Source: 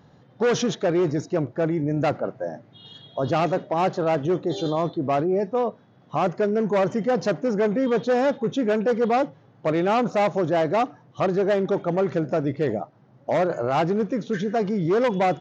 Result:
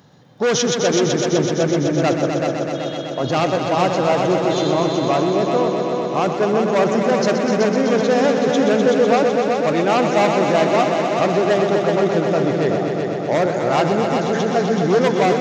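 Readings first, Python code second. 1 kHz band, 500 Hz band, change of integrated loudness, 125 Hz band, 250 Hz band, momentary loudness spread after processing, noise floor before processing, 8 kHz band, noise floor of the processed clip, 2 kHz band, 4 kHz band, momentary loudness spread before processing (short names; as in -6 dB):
+6.0 dB, +6.0 dB, +6.0 dB, +5.0 dB, +5.5 dB, 5 LU, -54 dBFS, n/a, -25 dBFS, +8.0 dB, +11.0 dB, 6 LU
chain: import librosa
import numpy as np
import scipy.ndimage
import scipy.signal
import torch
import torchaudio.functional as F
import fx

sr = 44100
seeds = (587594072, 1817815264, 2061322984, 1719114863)

y = scipy.signal.sosfilt(scipy.signal.butter(2, 86.0, 'highpass', fs=sr, output='sos'), x)
y = fx.high_shelf(y, sr, hz=3600.0, db=11.0)
y = fx.echo_heads(y, sr, ms=126, heads='all three', feedback_pct=73, wet_db=-9)
y = y * 10.0 ** (2.5 / 20.0)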